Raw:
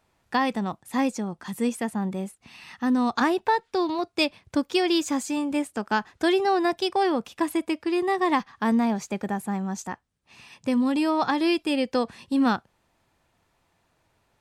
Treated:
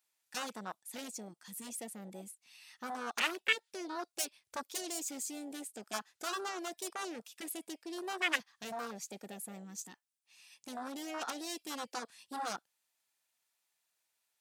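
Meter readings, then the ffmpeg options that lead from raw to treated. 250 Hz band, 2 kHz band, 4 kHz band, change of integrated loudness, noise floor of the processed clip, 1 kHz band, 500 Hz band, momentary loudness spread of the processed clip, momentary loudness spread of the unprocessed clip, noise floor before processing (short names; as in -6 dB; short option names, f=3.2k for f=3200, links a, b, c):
-22.0 dB, -7.5 dB, -9.0 dB, -14.0 dB, -85 dBFS, -15.5 dB, -18.5 dB, 13 LU, 8 LU, -70 dBFS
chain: -af "aeval=exprs='0.316*(cos(1*acos(clip(val(0)/0.316,-1,1)))-cos(1*PI/2))+0.0794*(cos(2*acos(clip(val(0)/0.316,-1,1)))-cos(2*PI/2))+0.141*(cos(3*acos(clip(val(0)/0.316,-1,1)))-cos(3*PI/2))+0.0447*(cos(7*acos(clip(val(0)/0.316,-1,1)))-cos(7*PI/2))':c=same,equalizer=f=1.1k:t=o:w=0.39:g=-2.5,afwtdn=0.0447,aderivative,volume=10.5dB"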